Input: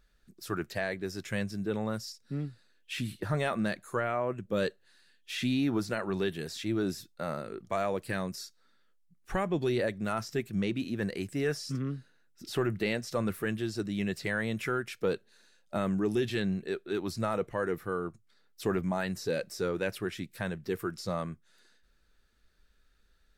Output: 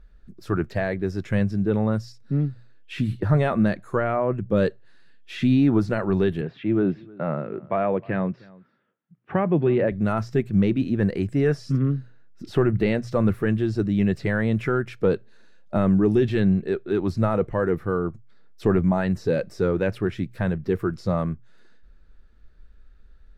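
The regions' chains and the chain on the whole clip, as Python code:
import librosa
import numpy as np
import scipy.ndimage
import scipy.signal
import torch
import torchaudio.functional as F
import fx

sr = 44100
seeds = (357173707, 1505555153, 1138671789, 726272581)

y = fx.chain(x, sr, fx.cheby1_bandpass(low_hz=130.0, high_hz=2900.0, order=3),
    fx.echo_single(ms=310, db=-23.5), at=(6.41, 9.92))
y = fx.lowpass(y, sr, hz=1200.0, slope=6)
y = fx.low_shelf(y, sr, hz=120.0, db=11.0)
y = fx.hum_notches(y, sr, base_hz=60, count=2)
y = y * librosa.db_to_amplitude(8.5)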